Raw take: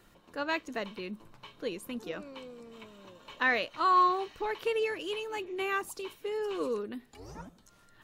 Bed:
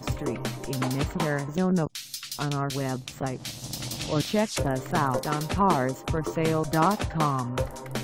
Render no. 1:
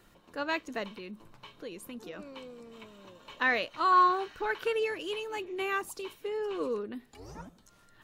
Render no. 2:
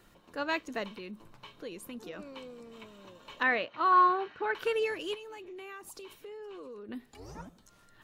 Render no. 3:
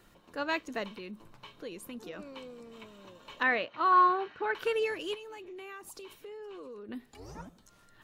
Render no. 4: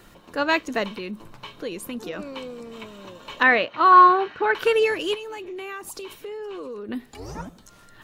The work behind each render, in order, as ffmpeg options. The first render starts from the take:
-filter_complex "[0:a]asettb=1/sr,asplit=3[a][b][c];[a]atrim=end=0.884[d];[b]atrim=start=0.88:end=2.19,asetpts=PTS-STARTPTS,afade=t=in:d=0.004:c=qsin,afade=t=out:st=1.306:d=0.004:c=qsin,acompressor=threshold=-42dB:ratio=2:attack=3.2:release=140:knee=1:detection=peak[e];[c]atrim=start=2.186[f];[d][e]acrossfade=d=0.004:c1=hsin:c2=qsin[g];[g][f]acrossfade=d=0.004:c1=qsin:c2=hsin,asettb=1/sr,asplit=3[h][i][j];[h]atrim=end=3.924[k];[i]atrim=start=3.92:end=4.75,asetpts=PTS-STARTPTS,afade=t=in:d=0.004:c=qsin,afade=t=out:st=0.826:d=0.004:c=qsin,equalizer=f=1.5k:t=o:w=0.3:g=12.5[l];[j]atrim=start=4.746[m];[k][l]acrossfade=d=0.004:c1=hsin:c2=qsin[n];[n][m]acrossfade=d=0.004:c1=qsin:c2=hsin,asettb=1/sr,asplit=3[o][p][q];[o]atrim=end=6.274[r];[p]atrim=start=6.27:end=6.96,asetpts=PTS-STARTPTS,afade=t=in:d=0.004:c=qsin,afade=t=out:st=0.686:d=0.004:c=qsin,highshelf=f=4.8k:g=-8[s];[q]atrim=start=6.956[t];[r][s]acrossfade=d=0.004:c1=hsin:c2=qsin[u];[u][t]acrossfade=d=0.004:c1=qsin:c2=hsin"
-filter_complex "[0:a]asettb=1/sr,asplit=3[a][b][c];[a]atrim=end=3.434[d];[b]atrim=start=3.43:end=4.55,asetpts=PTS-STARTPTS,afade=t=in:d=0.004:c=qsin,afade=t=out:st=1.116:d=0.004:c=qsin,highpass=110,lowpass=2.9k[e];[c]atrim=start=4.546[f];[d][e]acrossfade=d=0.004:c1=hsin:c2=qsin[g];[g][f]acrossfade=d=0.004:c1=qsin:c2=hsin,asettb=1/sr,asplit=3[h][i][j];[h]atrim=end=5.144[k];[i]atrim=start=5.14:end=6.89,asetpts=PTS-STARTPTS,afade=t=in:d=0.004:c=qsin,afade=t=out:st=1.746:d=0.004:c=qsin,acompressor=threshold=-43dB:ratio=6:attack=3.2:release=140:knee=1:detection=peak[l];[j]atrim=start=6.886[m];[k][l]acrossfade=d=0.004:c1=hsin:c2=qsin[n];[n][m]acrossfade=d=0.004:c1=qsin:c2=hsin"
-af anull
-af "volume=10.5dB"

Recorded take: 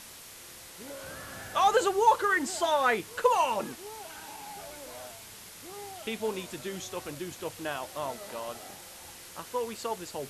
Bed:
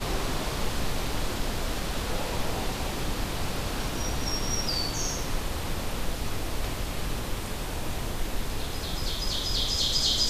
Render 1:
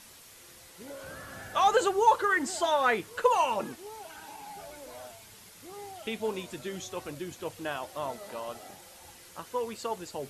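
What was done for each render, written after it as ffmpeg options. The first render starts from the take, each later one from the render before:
-af "afftdn=nr=6:nf=-48"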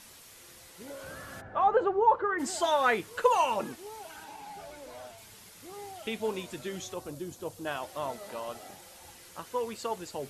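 -filter_complex "[0:a]asplit=3[a][b][c];[a]afade=t=out:st=1.4:d=0.02[d];[b]lowpass=1.2k,afade=t=in:st=1.4:d=0.02,afade=t=out:st=2.38:d=0.02[e];[c]afade=t=in:st=2.38:d=0.02[f];[d][e][f]amix=inputs=3:normalize=0,asettb=1/sr,asplit=3[g][h][i];[g]atrim=end=4.244[j];[h]atrim=start=4.24:end=5.18,asetpts=PTS-STARTPTS,afade=t=in:d=0.004:c=qsin,afade=t=out:st=0.936:d=0.004:c=qsin,highshelf=f=7.6k:g=-7[k];[i]atrim=start=5.176[l];[j][k]acrossfade=d=0.004:c1=hsin:c2=qsin[m];[m][l]acrossfade=d=0.004:c1=qsin:c2=hsin,asettb=1/sr,asplit=3[n][o][p];[n]atrim=end=6.944[q];[o]atrim=start=6.94:end=7.67,asetpts=PTS-STARTPTS,afade=t=in:d=0.004:c=qsin,afade=t=out:st=0.726:d=0.004:c=qsin,equalizer=f=2.2k:t=o:w=1.5:g=-10.5[r];[p]atrim=start=7.666[s];[q][r]acrossfade=d=0.004:c1=hsin:c2=qsin[t];[t][s]acrossfade=d=0.004:c1=qsin:c2=hsin"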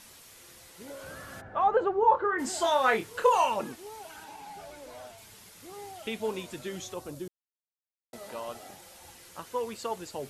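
-filter_complex "[0:a]asettb=1/sr,asplit=3[a][b][c];[a]atrim=end=2.004[d];[b]atrim=start=2:end=3.49,asetpts=PTS-STARTPTS,afade=t=in:d=0.004:c=qsin,afade=t=out:st=1.486:d=0.004:c=qsin,asplit=2[e][f];[f]adelay=27,volume=-6dB[g];[e][g]amix=inputs=2:normalize=0,atrim=end_sample=65709[h];[c]atrim=start=3.486[i];[d][h]acrossfade=d=0.004:c1=hsin:c2=qsin[j];[j][i]acrossfade=d=0.004:c1=qsin:c2=hsin,asplit=3[k][l][m];[k]atrim=end=7.28,asetpts=PTS-STARTPTS,afade=t=out:st=7.276:d=0.004:c=hsin[n];[l]atrim=start=7.28:end=8.13,asetpts=PTS-STARTPTS,volume=0[o];[m]atrim=start=8.13,asetpts=PTS-STARTPTS,afade=t=in:d=0.004:c=hsin[p];[n][o][p]concat=n=3:v=0:a=1"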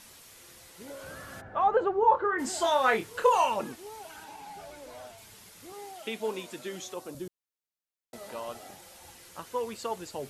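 -filter_complex "[0:a]asettb=1/sr,asplit=3[a][b][c];[a]atrim=end=5.724[d];[b]atrim=start=5.72:end=7.15,asetpts=PTS-STARTPTS,afade=t=in:d=0.004:c=qsin,afade=t=out:st=1.426:d=0.004:c=qsin,highpass=210[e];[c]atrim=start=7.146[f];[d][e]acrossfade=d=0.004:c1=hsin:c2=qsin[g];[g][f]acrossfade=d=0.004:c1=qsin:c2=hsin"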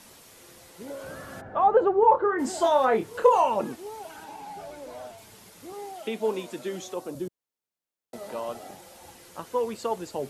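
-filter_complex "[0:a]acrossover=split=130|990[a][b][c];[b]acontrast=54[d];[c]alimiter=level_in=3dB:limit=-24dB:level=0:latency=1:release=264,volume=-3dB[e];[a][d][e]amix=inputs=3:normalize=0"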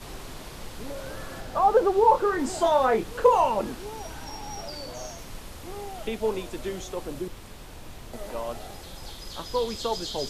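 -filter_complex "[1:a]volume=-11dB[a];[0:a][a]amix=inputs=2:normalize=0"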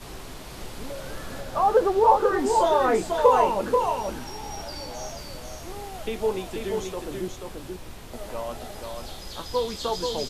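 -filter_complex "[0:a]asplit=2[a][b];[b]adelay=16,volume=-11.5dB[c];[a][c]amix=inputs=2:normalize=0,aecho=1:1:484:0.596"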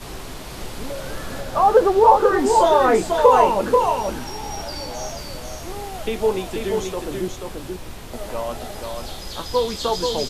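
-af "volume=5.5dB,alimiter=limit=-2dB:level=0:latency=1"

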